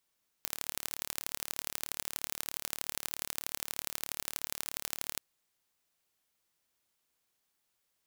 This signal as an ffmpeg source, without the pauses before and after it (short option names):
-f lavfi -i "aevalsrc='0.473*eq(mod(n,1198),0)*(0.5+0.5*eq(mod(n,3594),0))':d=4.74:s=44100"